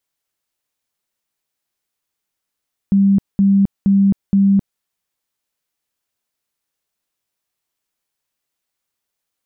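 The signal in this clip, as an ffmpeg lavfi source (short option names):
-f lavfi -i "aevalsrc='0.355*sin(2*PI*197*mod(t,0.47))*lt(mod(t,0.47),52/197)':d=1.88:s=44100"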